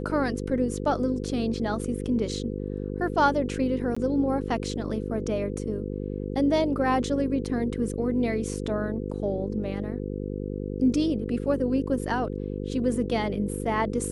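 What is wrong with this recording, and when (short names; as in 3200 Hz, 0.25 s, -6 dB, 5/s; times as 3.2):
buzz 50 Hz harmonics 10 -32 dBFS
3.95–3.96 gap 15 ms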